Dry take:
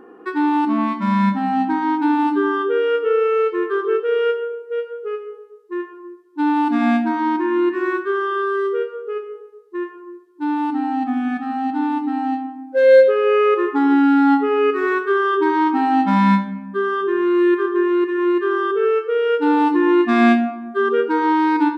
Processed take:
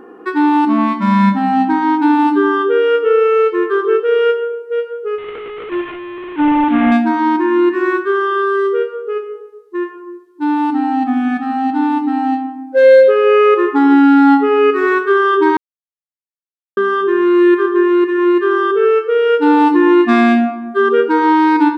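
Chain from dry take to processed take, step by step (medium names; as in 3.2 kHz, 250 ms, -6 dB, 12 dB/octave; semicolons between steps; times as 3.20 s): 5.18–6.92 s: one-bit delta coder 16 kbps, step -27 dBFS; 15.57–16.77 s: mute; loudness maximiser +6.5 dB; trim -1 dB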